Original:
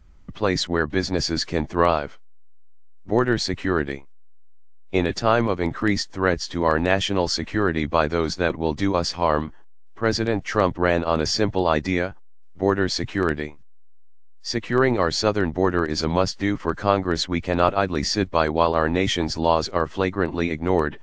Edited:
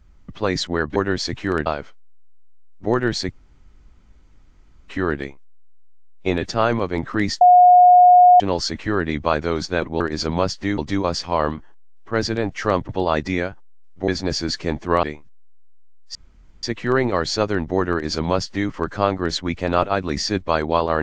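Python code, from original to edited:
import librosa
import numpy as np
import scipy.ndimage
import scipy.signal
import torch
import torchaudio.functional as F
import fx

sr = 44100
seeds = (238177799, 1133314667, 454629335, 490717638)

y = fx.edit(x, sr, fx.swap(start_s=0.96, length_s=0.95, other_s=12.67, other_length_s=0.7),
    fx.insert_room_tone(at_s=3.56, length_s=1.57),
    fx.bleep(start_s=6.09, length_s=0.99, hz=720.0, db=-6.5),
    fx.cut(start_s=10.79, length_s=0.69),
    fx.insert_room_tone(at_s=14.49, length_s=0.48),
    fx.duplicate(start_s=15.78, length_s=0.78, to_s=8.68), tone=tone)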